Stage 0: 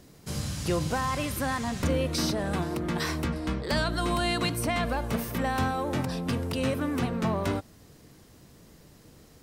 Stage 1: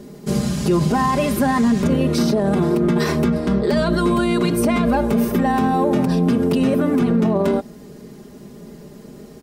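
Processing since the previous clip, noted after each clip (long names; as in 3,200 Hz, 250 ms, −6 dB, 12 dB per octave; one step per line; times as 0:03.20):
parametric band 310 Hz +13.5 dB 2.5 octaves
comb filter 4.9 ms, depth 81%
brickwall limiter −13 dBFS, peak gain reduction 9.5 dB
level +3.5 dB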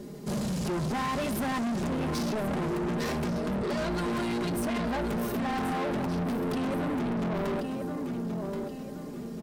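flanger 0.59 Hz, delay 5.1 ms, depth 9 ms, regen +87%
repeating echo 1,078 ms, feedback 33%, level −11 dB
soft clipping −29 dBFS, distortion −7 dB
level +1 dB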